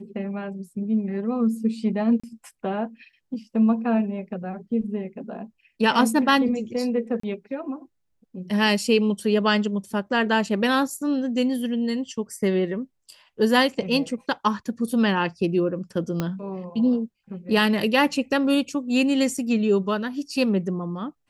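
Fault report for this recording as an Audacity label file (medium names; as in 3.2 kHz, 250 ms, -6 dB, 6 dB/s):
2.200000	2.230000	dropout 35 ms
7.200000	7.230000	dropout 34 ms
16.200000	16.200000	pop -12 dBFS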